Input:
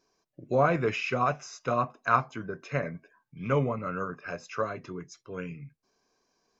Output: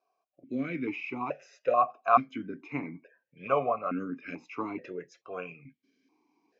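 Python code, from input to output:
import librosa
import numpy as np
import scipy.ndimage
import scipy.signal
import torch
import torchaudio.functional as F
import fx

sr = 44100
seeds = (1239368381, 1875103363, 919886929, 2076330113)

p1 = np.clip(10.0 ** (15.5 / 20.0) * x, -1.0, 1.0) / 10.0 ** (15.5 / 20.0)
p2 = x + (p1 * librosa.db_to_amplitude(-10.5))
p3 = fx.rider(p2, sr, range_db=5, speed_s=2.0)
p4 = fx.vowel_held(p3, sr, hz=2.3)
y = p4 * librosa.db_to_amplitude(8.0)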